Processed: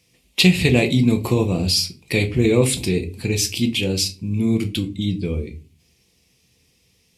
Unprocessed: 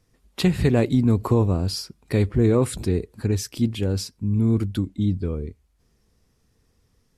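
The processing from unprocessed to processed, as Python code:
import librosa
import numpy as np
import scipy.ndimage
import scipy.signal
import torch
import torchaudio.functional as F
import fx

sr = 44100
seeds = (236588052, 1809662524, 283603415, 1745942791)

y = scipy.signal.sosfilt(scipy.signal.butter(2, 77.0, 'highpass', fs=sr, output='sos'), x)
y = fx.high_shelf_res(y, sr, hz=1900.0, db=8.5, q=3.0)
y = fx.room_shoebox(y, sr, seeds[0], volume_m3=180.0, walls='furnished', distance_m=0.83)
y = y * librosa.db_to_amplitude(1.0)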